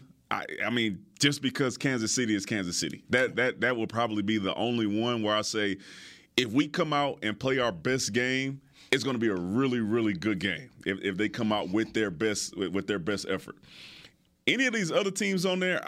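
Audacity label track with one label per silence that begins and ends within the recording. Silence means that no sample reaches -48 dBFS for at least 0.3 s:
14.090000	14.470000	silence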